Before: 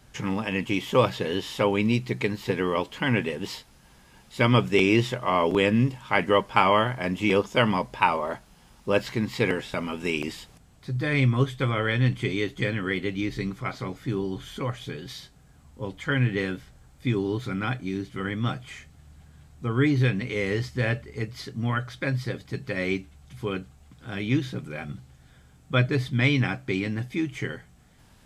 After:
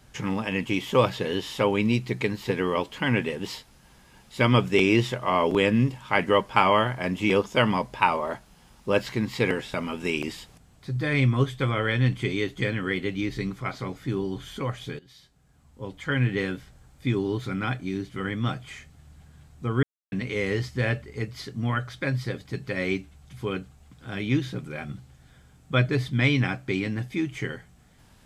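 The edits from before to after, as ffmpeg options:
-filter_complex "[0:a]asplit=4[a][b][c][d];[a]atrim=end=14.99,asetpts=PTS-STARTPTS,afade=t=out:st=14.986:d=0.004:c=hsin:silence=0.125893[e];[b]atrim=start=14.99:end=19.83,asetpts=PTS-STARTPTS,afade=t=in:d=1.29:silence=0.125893,afade=t=out:st=4.836:d=0.004:c=hsin[f];[c]atrim=start=19.83:end=20.12,asetpts=PTS-STARTPTS,volume=0[g];[d]atrim=start=20.12,asetpts=PTS-STARTPTS,afade=t=in:d=0.004:c=hsin[h];[e][f][g][h]concat=n=4:v=0:a=1"

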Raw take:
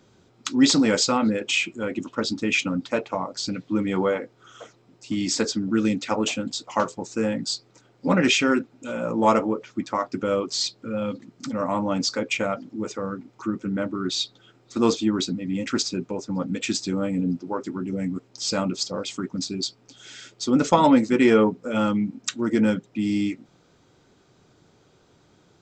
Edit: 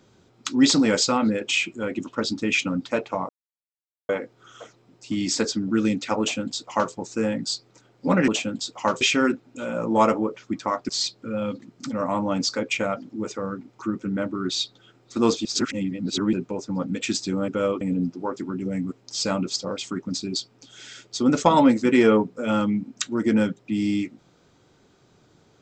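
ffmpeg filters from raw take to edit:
-filter_complex "[0:a]asplit=10[a][b][c][d][e][f][g][h][i][j];[a]atrim=end=3.29,asetpts=PTS-STARTPTS,afade=t=out:st=3.286:d=0.004:c=hsin[k];[b]atrim=start=3.29:end=4.09,asetpts=PTS-STARTPTS,volume=0[l];[c]atrim=start=4.09:end=8.282,asetpts=PTS-STARTPTS,afade=t=in:d=0.004:c=hsin[m];[d]atrim=start=6.198:end=6.932[n];[e]atrim=start=8.278:end=10.162[o];[f]atrim=start=10.488:end=15.052[p];[g]atrim=start=15.048:end=15.932,asetpts=PTS-STARTPTS,areverse[q];[h]atrim=start=15.928:end=17.082[r];[i]atrim=start=10.158:end=10.492[s];[j]atrim=start=17.078[t];[k][l][m]concat=n=3:v=0:a=1[u];[u][n]acrossfade=d=0.004:c1=hsin:c2=hsin[v];[v][o]acrossfade=d=0.004:c1=hsin:c2=hsin[w];[w][p]acrossfade=d=0.004:c1=hsin:c2=hsin[x];[x][q]acrossfade=d=0.004:c1=hsin:c2=hsin[y];[y][r]acrossfade=d=0.004:c1=hsin:c2=hsin[z];[z][s]acrossfade=d=0.004:c1=hsin:c2=hsin[aa];[aa][t]acrossfade=d=0.004:c1=hsin:c2=hsin"

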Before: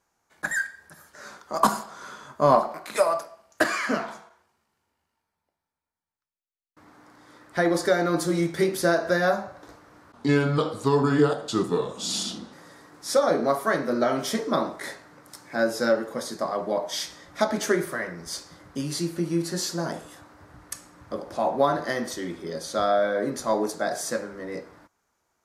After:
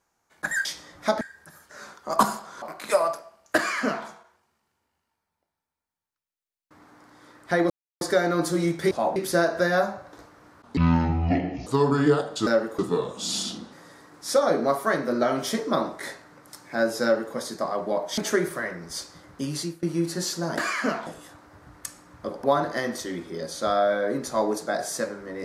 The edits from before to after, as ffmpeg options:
-filter_complex "[0:a]asplit=16[a][b][c][d][e][f][g][h][i][j][k][l][m][n][o][p];[a]atrim=end=0.652[q];[b]atrim=start=16.978:end=17.542[r];[c]atrim=start=0.648:end=2.062[s];[d]atrim=start=2.678:end=7.76,asetpts=PTS-STARTPTS,afade=t=out:st=5.078:d=0.004:c=hsin,apad=pad_dur=0.31[t];[e]atrim=start=7.76:end=8.662,asetpts=PTS-STARTPTS,afade=t=in:d=0.004:c=hsin[u];[f]atrim=start=21.308:end=21.562[v];[g]atrim=start=8.658:end=10.274[w];[h]atrim=start=10.27:end=10.79,asetpts=PTS-STARTPTS,asetrate=25578,aresample=44100[x];[i]atrim=start=10.786:end=11.592[y];[j]atrim=start=15.828:end=16.152[z];[k]atrim=start=11.588:end=16.982[aa];[l]atrim=start=17.538:end=19.19,asetpts=PTS-STARTPTS,afade=t=out:st=1.402:d=0.25:silence=0.0891251[ab];[m]atrim=start=19.19:end=19.942,asetpts=PTS-STARTPTS,afade=t=in:d=0.004:c=hsin:silence=0.0891251[ac];[n]atrim=start=3.628:end=4.122[ad];[o]atrim=start=19.938:end=21.312[ae];[p]atrim=start=21.558[af];[q][r]acrossfade=d=0.004:c1=hsin:c2=hsin[ag];[ag][s]acrossfade=d=0.004:c1=hsin:c2=hsin[ah];[t][u]concat=n=2:v=0:a=1[ai];[ah][ai]acrossfade=d=0.004:c1=hsin:c2=hsin[aj];[aj][v]acrossfade=d=0.004:c1=hsin:c2=hsin[ak];[ak][w]acrossfade=d=0.004:c1=hsin:c2=hsin[al];[al][x]acrossfade=d=0.004:c1=hsin:c2=hsin[am];[am][y]acrossfade=d=0.004:c1=hsin:c2=hsin[an];[an][z]acrossfade=d=0.004:c1=hsin:c2=hsin[ao];[ao][aa]acrossfade=d=0.004:c1=hsin:c2=hsin[ap];[ab][ac]concat=n=2:v=0:a=1[aq];[ap][aq]acrossfade=d=0.004:c1=hsin:c2=hsin[ar];[ar][ad]acrossfade=d=0.004:c1=hsin:c2=hsin[as];[as][ae]acrossfade=d=0.004:c1=hsin:c2=hsin[at];[at][af]acrossfade=d=0.004:c1=hsin:c2=hsin"

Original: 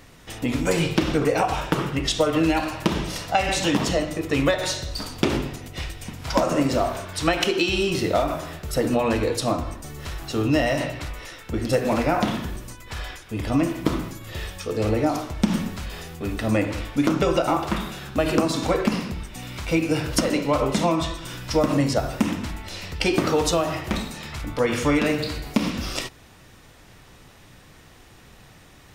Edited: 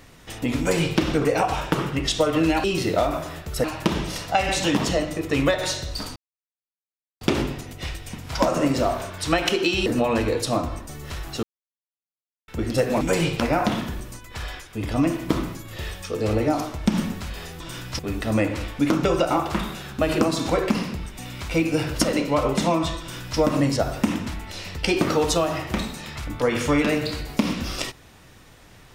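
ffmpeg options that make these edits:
-filter_complex "[0:a]asplit=11[a][b][c][d][e][f][g][h][i][j][k];[a]atrim=end=2.642[l];[b]atrim=start=7.808:end=8.812[m];[c]atrim=start=2.638:end=5.16,asetpts=PTS-STARTPTS,afade=t=out:st=2.518:d=0.004:c=hsin,apad=pad_dur=1.05[n];[d]atrim=start=5.16:end=7.812,asetpts=PTS-STARTPTS,afade=t=in:d=0.004:c=hsin[o];[e]atrim=start=8.808:end=10.38,asetpts=PTS-STARTPTS,afade=t=out:st=1.568:d=0.004:c=hsin[p];[f]atrim=start=10.38:end=11.43,asetpts=PTS-STARTPTS,volume=0[q];[g]atrim=start=11.43:end=11.962,asetpts=PTS-STARTPTS,afade=t=in:d=0.004:c=hsin[r];[h]atrim=start=0.588:end=0.982[s];[i]atrim=start=11.958:end=16.162[t];[j]atrim=start=21.158:end=21.552[u];[k]atrim=start=16.158[v];[l][m]acrossfade=d=0.004:c1=hsin:c2=hsin[w];[n][o]concat=n=2:v=0:a=1[x];[w][x]acrossfade=d=0.004:c1=hsin:c2=hsin[y];[p][q][r]concat=n=3:v=0:a=1[z];[y][z]acrossfade=d=0.004:c1=hsin:c2=hsin[aa];[aa][s]acrossfade=d=0.004:c1=hsin:c2=hsin[ab];[ab][t]acrossfade=d=0.004:c1=hsin:c2=hsin[ac];[ac][u]acrossfade=d=0.004:c1=hsin:c2=hsin[ad];[ad][v]acrossfade=d=0.004:c1=hsin:c2=hsin"

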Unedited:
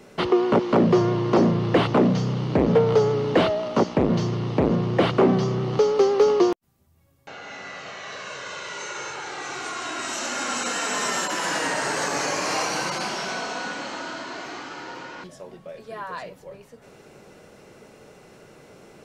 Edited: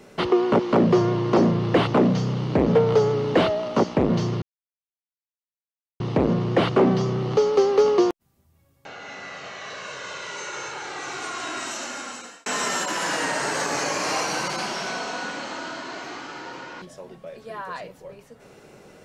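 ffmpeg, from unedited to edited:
-filter_complex "[0:a]asplit=3[a][b][c];[a]atrim=end=4.42,asetpts=PTS-STARTPTS,afade=t=out:st=4.416:d=0.004:c=hsin,apad=pad_dur=1.58[d];[b]atrim=start=4.42:end=10.88,asetpts=PTS-STARTPTS,afade=t=in:d=0.004:c=hsin,afade=t=out:st=5.53:d=0.93[e];[c]atrim=start=10.88,asetpts=PTS-STARTPTS,afade=t=in:d=0.004:c=hsin[f];[d][e][f]concat=n=3:v=0:a=1"

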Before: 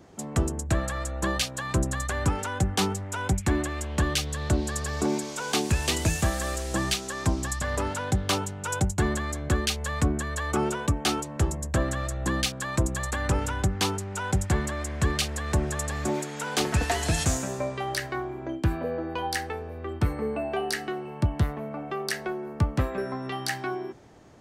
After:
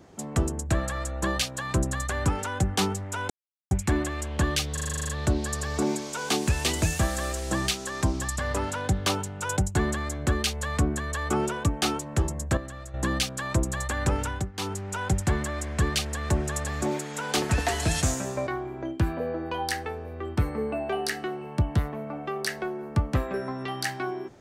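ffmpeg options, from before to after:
-filter_complex "[0:a]asplit=16[a][b][c][d][e][f][g][h][i][j][k][l][m][n][o][p];[a]atrim=end=3.3,asetpts=PTS-STARTPTS,afade=t=out:st=3.296:d=0.004:c=hsin,apad=pad_dur=0.41[q];[b]atrim=start=3.3:end=4.362,asetpts=PTS-STARTPTS,afade=t=in:d=0.004:c=hsin[r];[c]atrim=start=4.318:end=4.362[s];[d]atrim=start=4.318:end=4.362[t];[e]atrim=start=4.318:end=4.362[u];[f]atrim=start=4.318:end=4.362[v];[g]atrim=start=4.318:end=4.362[w];[h]atrim=start=4.318:end=4.362[x];[i]atrim=start=4.318:end=4.362[y];[j]atrim=start=4.318:end=4.362[z];[k]atrim=start=4.318:end=11.802[aa];[l]atrim=start=11.798:end=12.172,asetpts=PTS-STARTPTS,volume=-10dB[ab];[m]atrim=start=12.168:end=13.75,asetpts=PTS-STARTPTS,afade=t=out:st=1.242:d=0.34:c=qsin:silence=0.188365[ac];[n]atrim=start=13.75:end=13.76,asetpts=PTS-STARTPTS,volume=-14.5dB[ad];[o]atrim=start=13.76:end=17.702,asetpts=PTS-STARTPTS,afade=t=in:d=0.34:c=qsin:silence=0.188365[ae];[p]atrim=start=18.108[af];[q][r]concat=n=2:v=0:a=1[ag];[ag][s]acrossfade=d=0.004:c1=hsin:c2=hsin[ah];[ah][t]acrossfade=d=0.004:c1=hsin:c2=hsin[ai];[ai][u]acrossfade=d=0.004:c1=hsin:c2=hsin[aj];[aj][v]acrossfade=d=0.004:c1=hsin:c2=hsin[ak];[ak][w]acrossfade=d=0.004:c1=hsin:c2=hsin[al];[al][x]acrossfade=d=0.004:c1=hsin:c2=hsin[am];[am][y]acrossfade=d=0.004:c1=hsin:c2=hsin[an];[an][z]acrossfade=d=0.004:c1=hsin:c2=hsin[ao];[ao][aa]acrossfade=d=0.004:c1=hsin:c2=hsin[ap];[ap][ab]acrossfade=d=0.004:c1=hsin:c2=hsin[aq];[ac][ad][ae]concat=n=3:v=0:a=1[ar];[aq][ar]acrossfade=d=0.004:c1=hsin:c2=hsin[as];[as][af]acrossfade=d=0.004:c1=hsin:c2=hsin"

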